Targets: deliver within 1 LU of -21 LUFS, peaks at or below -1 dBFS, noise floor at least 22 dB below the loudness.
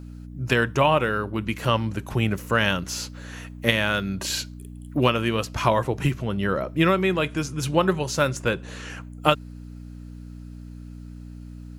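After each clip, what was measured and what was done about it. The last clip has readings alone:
hum 60 Hz; harmonics up to 300 Hz; hum level -38 dBFS; loudness -24.0 LUFS; peak -3.0 dBFS; loudness target -21.0 LUFS
-> de-hum 60 Hz, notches 5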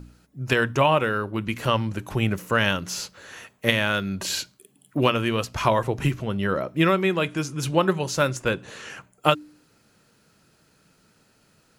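hum none; loudness -24.0 LUFS; peak -3.0 dBFS; loudness target -21.0 LUFS
-> gain +3 dB; limiter -1 dBFS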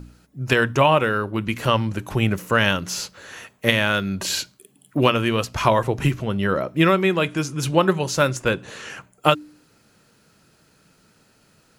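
loudness -21.0 LUFS; peak -1.0 dBFS; noise floor -59 dBFS

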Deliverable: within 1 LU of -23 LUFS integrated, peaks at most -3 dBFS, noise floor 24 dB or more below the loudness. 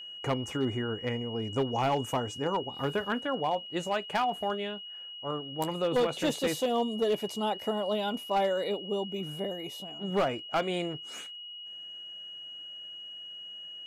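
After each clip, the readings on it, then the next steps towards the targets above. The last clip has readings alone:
clipped 0.9%; flat tops at -21.5 dBFS; steady tone 2900 Hz; tone level -41 dBFS; loudness -32.0 LUFS; peak -21.5 dBFS; loudness target -23.0 LUFS
-> clip repair -21.5 dBFS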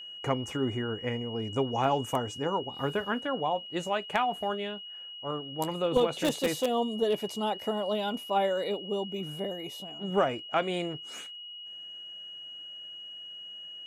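clipped 0.0%; steady tone 2900 Hz; tone level -41 dBFS
-> notch 2900 Hz, Q 30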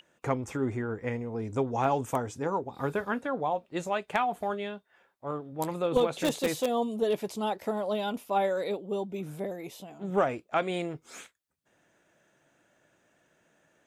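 steady tone none; loudness -31.0 LUFS; peak -12.0 dBFS; loudness target -23.0 LUFS
-> gain +8 dB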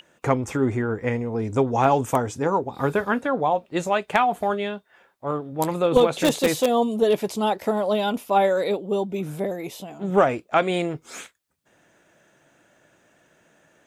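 loudness -23.0 LUFS; peak -4.0 dBFS; noise floor -64 dBFS

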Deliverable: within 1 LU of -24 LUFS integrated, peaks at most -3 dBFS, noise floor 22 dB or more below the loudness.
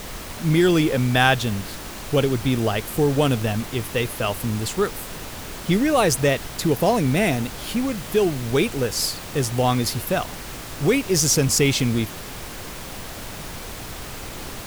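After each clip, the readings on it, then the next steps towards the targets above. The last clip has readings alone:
noise floor -35 dBFS; noise floor target -44 dBFS; loudness -21.5 LUFS; peak -3.0 dBFS; loudness target -24.0 LUFS
-> noise print and reduce 9 dB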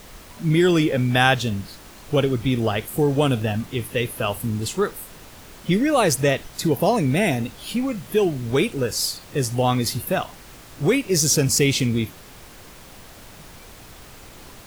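noise floor -44 dBFS; loudness -21.5 LUFS; peak -3.0 dBFS; loudness target -24.0 LUFS
-> gain -2.5 dB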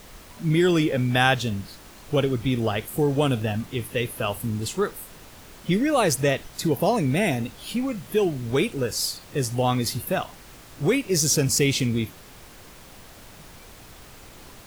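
loudness -24.0 LUFS; peak -5.5 dBFS; noise floor -46 dBFS

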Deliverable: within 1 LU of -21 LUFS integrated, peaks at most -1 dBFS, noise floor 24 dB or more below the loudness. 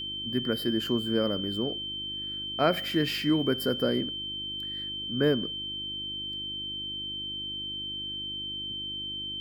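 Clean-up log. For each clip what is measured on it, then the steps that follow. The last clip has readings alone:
hum 50 Hz; harmonics up to 350 Hz; hum level -48 dBFS; steady tone 3100 Hz; tone level -33 dBFS; loudness -30.0 LUFS; peak -11.5 dBFS; loudness target -21.0 LUFS
-> de-hum 50 Hz, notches 7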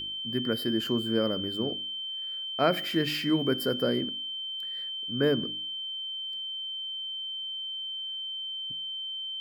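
hum none; steady tone 3100 Hz; tone level -33 dBFS
-> notch 3100 Hz, Q 30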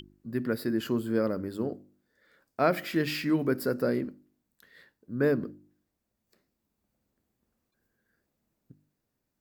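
steady tone none; loudness -29.5 LUFS; peak -11.5 dBFS; loudness target -21.0 LUFS
-> gain +8.5 dB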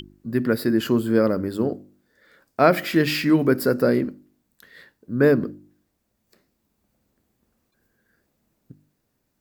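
loudness -21.0 LUFS; peak -3.0 dBFS; noise floor -74 dBFS

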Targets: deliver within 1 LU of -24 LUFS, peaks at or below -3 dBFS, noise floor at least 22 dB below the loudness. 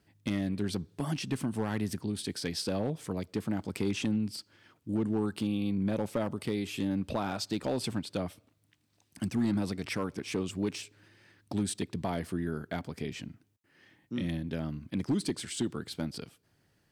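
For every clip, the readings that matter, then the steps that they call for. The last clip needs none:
clipped 0.6%; flat tops at -22.5 dBFS; loudness -34.0 LUFS; peak -22.5 dBFS; loudness target -24.0 LUFS
-> clip repair -22.5 dBFS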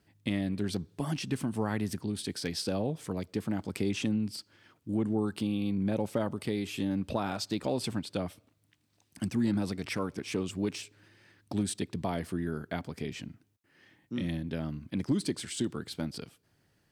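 clipped 0.0%; loudness -33.5 LUFS; peak -15.0 dBFS; loudness target -24.0 LUFS
-> gain +9.5 dB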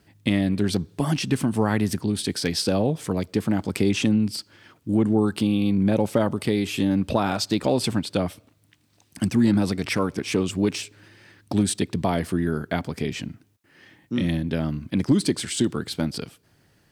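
loudness -24.0 LUFS; peak -5.5 dBFS; noise floor -62 dBFS

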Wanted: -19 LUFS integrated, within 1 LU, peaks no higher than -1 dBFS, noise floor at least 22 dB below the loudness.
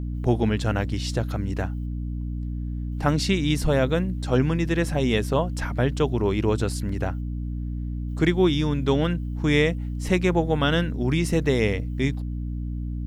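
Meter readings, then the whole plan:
hum 60 Hz; harmonics up to 300 Hz; hum level -27 dBFS; loudness -24.5 LUFS; peak -7.5 dBFS; loudness target -19.0 LUFS
-> notches 60/120/180/240/300 Hz; gain +5.5 dB

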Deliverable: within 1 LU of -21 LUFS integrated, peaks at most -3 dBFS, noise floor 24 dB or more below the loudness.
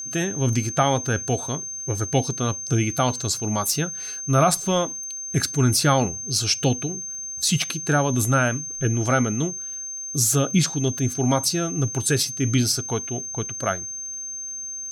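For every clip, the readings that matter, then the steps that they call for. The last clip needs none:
ticks 22/s; steady tone 6300 Hz; tone level -30 dBFS; loudness -23.0 LUFS; peak -7.5 dBFS; loudness target -21.0 LUFS
-> de-click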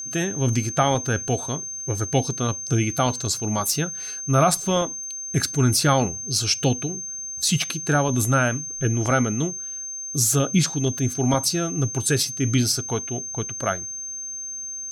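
ticks 0.27/s; steady tone 6300 Hz; tone level -30 dBFS
-> notch 6300 Hz, Q 30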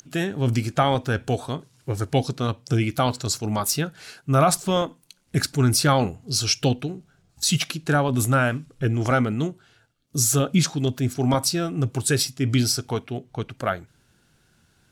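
steady tone none; loudness -23.5 LUFS; peak -7.5 dBFS; loudness target -21.0 LUFS
-> gain +2.5 dB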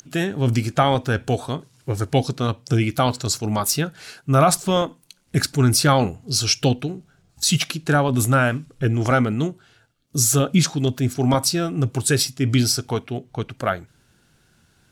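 loudness -21.0 LUFS; peak -5.0 dBFS; noise floor -60 dBFS

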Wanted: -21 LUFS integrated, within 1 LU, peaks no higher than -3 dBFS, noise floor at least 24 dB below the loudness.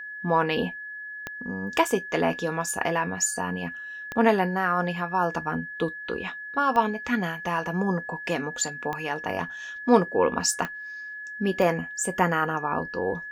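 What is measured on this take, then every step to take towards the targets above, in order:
clicks 6; steady tone 1700 Hz; tone level -35 dBFS; loudness -26.5 LUFS; peak -4.5 dBFS; loudness target -21.0 LUFS
-> de-click; notch 1700 Hz, Q 30; gain +5.5 dB; limiter -3 dBFS

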